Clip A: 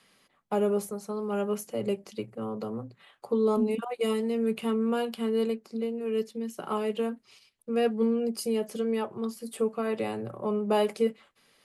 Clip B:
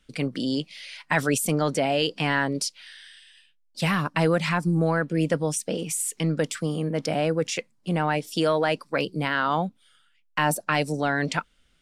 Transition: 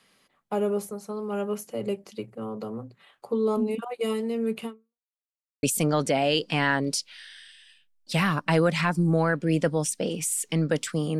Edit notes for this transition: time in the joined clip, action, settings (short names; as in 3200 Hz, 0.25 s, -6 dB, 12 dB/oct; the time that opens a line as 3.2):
clip A
4.65–5.07 fade out exponential
5.07–5.63 mute
5.63 switch to clip B from 1.31 s